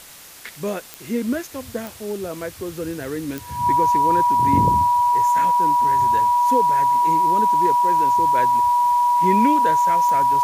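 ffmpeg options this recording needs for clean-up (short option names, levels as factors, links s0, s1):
-af "adeclick=t=4,bandreject=f=970:w=30,afwtdn=0.0089"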